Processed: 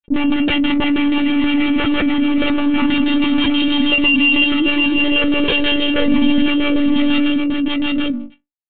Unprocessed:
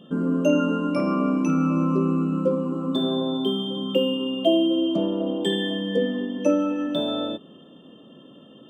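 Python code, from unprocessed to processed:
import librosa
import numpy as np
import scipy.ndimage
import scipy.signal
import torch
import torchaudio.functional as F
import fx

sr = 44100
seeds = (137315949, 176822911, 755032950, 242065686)

p1 = fx.doppler_pass(x, sr, speed_mps=6, closest_m=5.8, pass_at_s=2.98)
p2 = fx.rider(p1, sr, range_db=4, speed_s=2.0)
p3 = fx.fuzz(p2, sr, gain_db=49.0, gate_db=-46.0)
p4 = fx.filter_lfo_lowpass(p3, sr, shape='square', hz=6.2, low_hz=320.0, high_hz=2900.0, q=5.0)
p5 = fx.stiff_resonator(p4, sr, f0_hz=240.0, decay_s=0.24, stiffness=0.008)
p6 = p5 + fx.echo_single(p5, sr, ms=737, db=-7.5, dry=0)
p7 = fx.lpc_monotone(p6, sr, seeds[0], pitch_hz=290.0, order=16)
y = fx.env_flatten(p7, sr, amount_pct=70)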